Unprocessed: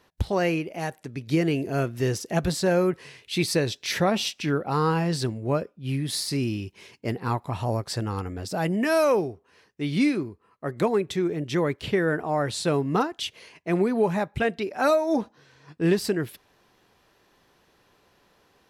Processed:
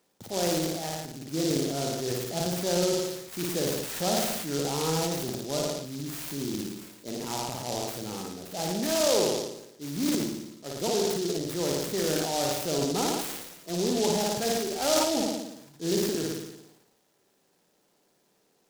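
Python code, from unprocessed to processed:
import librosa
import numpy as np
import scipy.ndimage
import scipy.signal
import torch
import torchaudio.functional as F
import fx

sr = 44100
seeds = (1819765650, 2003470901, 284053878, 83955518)

p1 = fx.peak_eq(x, sr, hz=1100.0, db=-9.5, octaves=0.27)
p2 = fx.notch(p1, sr, hz=1500.0, q=23.0)
p3 = p2 + fx.room_flutter(p2, sr, wall_m=9.7, rt60_s=0.88, dry=0)
p4 = fx.dynamic_eq(p3, sr, hz=800.0, q=1.0, threshold_db=-35.0, ratio=4.0, max_db=5)
p5 = scipy.signal.sosfilt(scipy.signal.butter(4, 150.0, 'highpass', fs=sr, output='sos'), p4)
p6 = fx.transient(p5, sr, attack_db=-4, sustain_db=9)
p7 = scipy.signal.sosfilt(scipy.signal.butter(2, 6200.0, 'lowpass', fs=sr, output='sos'), p6)
p8 = fx.noise_mod_delay(p7, sr, seeds[0], noise_hz=4900.0, depth_ms=0.13)
y = p8 * 10.0 ** (-7.5 / 20.0)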